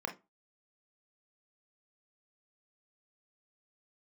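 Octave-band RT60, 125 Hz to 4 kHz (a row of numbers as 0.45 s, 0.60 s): 0.25 s, 0.30 s, 0.25 s, 0.25 s, 0.20 s, 0.15 s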